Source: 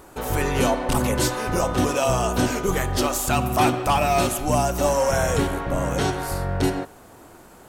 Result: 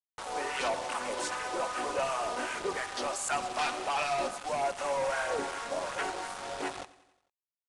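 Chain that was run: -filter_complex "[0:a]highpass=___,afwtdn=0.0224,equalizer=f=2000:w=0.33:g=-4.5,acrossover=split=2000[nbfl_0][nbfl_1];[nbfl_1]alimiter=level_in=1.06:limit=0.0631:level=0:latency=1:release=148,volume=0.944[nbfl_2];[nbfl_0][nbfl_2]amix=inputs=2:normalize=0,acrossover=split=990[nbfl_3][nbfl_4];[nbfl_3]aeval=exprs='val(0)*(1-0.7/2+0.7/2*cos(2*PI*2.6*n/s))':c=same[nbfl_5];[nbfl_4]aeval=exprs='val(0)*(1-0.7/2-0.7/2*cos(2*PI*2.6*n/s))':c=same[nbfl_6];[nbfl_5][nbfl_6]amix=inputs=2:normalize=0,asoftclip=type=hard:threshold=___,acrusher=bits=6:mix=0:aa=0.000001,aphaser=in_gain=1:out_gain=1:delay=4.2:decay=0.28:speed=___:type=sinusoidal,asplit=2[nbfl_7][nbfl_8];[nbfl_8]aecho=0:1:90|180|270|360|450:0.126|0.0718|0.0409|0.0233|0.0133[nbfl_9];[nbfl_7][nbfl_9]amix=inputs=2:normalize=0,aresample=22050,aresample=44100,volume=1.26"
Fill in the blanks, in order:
780, 0.0251, 1.5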